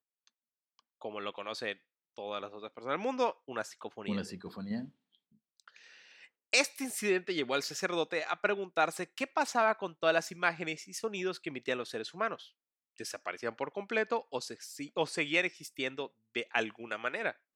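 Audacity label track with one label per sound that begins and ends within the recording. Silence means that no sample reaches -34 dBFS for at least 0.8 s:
1.050000	4.800000	sound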